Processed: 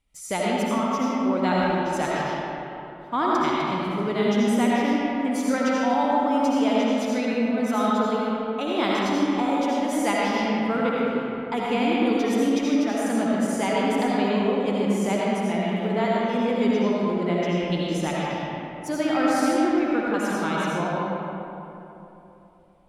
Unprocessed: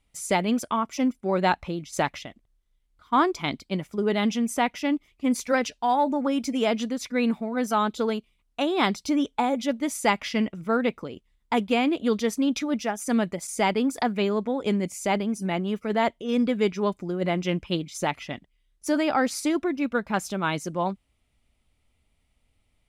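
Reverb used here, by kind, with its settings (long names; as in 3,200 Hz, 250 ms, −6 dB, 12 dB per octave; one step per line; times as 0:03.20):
comb and all-pass reverb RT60 3.2 s, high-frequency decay 0.5×, pre-delay 40 ms, DRR −6 dB
level −5 dB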